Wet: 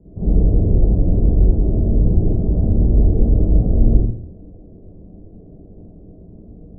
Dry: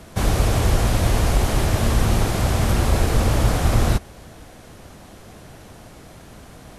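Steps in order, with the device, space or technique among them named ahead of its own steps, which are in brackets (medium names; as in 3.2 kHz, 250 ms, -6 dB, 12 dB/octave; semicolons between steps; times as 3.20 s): next room (low-pass 440 Hz 24 dB/octave; reverberation RT60 0.55 s, pre-delay 40 ms, DRR -8.5 dB); trim -6 dB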